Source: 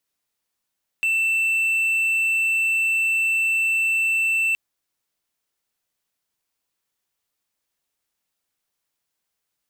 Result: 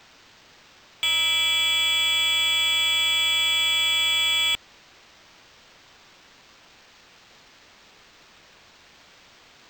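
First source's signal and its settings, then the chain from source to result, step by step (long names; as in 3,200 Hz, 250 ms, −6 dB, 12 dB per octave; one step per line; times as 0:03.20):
tone triangle 2,670 Hz −16 dBFS 3.52 s
spectral tilt +1.5 dB per octave
sine wavefolder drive 20 dB, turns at −13.5 dBFS
linearly interpolated sample-rate reduction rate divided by 4×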